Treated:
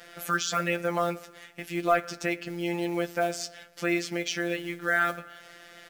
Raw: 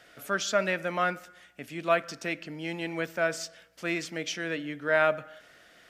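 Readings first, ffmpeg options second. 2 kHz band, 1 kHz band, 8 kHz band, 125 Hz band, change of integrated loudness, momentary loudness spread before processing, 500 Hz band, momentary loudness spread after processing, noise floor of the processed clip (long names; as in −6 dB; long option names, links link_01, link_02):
+0.5 dB, +2.0 dB, +2.5 dB, +3.0 dB, +1.0 dB, 12 LU, −0.5 dB, 15 LU, −51 dBFS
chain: -filter_complex "[0:a]asplit=2[link_01][link_02];[link_02]acompressor=threshold=-40dB:ratio=12,volume=2dB[link_03];[link_01][link_03]amix=inputs=2:normalize=0,acrusher=bits=5:mode=log:mix=0:aa=0.000001,afftfilt=real='hypot(re,im)*cos(PI*b)':imag='0':win_size=1024:overlap=0.75,asoftclip=type=tanh:threshold=-11.5dB,asplit=2[link_04][link_05];[link_05]adelay=14,volume=-13dB[link_06];[link_04][link_06]amix=inputs=2:normalize=0,volume=3dB"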